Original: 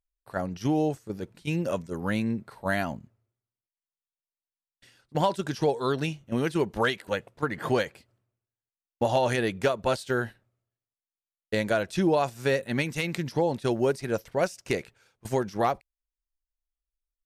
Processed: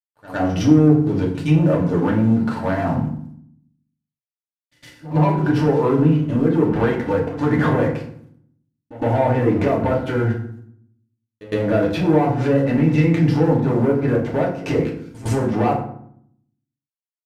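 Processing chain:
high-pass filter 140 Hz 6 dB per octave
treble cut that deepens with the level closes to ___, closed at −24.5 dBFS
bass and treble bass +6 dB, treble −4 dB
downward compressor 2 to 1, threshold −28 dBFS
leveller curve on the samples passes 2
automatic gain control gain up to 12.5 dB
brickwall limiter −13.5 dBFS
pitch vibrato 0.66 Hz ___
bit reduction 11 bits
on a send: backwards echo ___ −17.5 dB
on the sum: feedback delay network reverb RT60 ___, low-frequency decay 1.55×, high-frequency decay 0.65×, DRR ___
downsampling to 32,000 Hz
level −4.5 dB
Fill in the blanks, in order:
1,100 Hz, 40 cents, 110 ms, 0.63 s, −3 dB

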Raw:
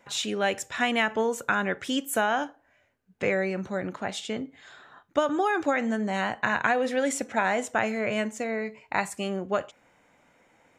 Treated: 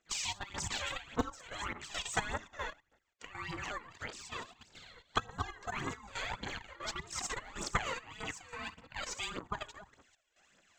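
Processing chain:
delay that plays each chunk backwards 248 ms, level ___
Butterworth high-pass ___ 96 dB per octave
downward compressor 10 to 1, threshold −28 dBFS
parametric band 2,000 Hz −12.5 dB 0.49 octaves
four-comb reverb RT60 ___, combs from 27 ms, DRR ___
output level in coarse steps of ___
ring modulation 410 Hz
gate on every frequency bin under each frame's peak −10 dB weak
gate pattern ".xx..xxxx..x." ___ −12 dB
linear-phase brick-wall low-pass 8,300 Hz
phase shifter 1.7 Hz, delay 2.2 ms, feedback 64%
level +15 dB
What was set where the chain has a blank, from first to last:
−13.5 dB, 320 Hz, 0.75 s, 18.5 dB, 15 dB, 139 BPM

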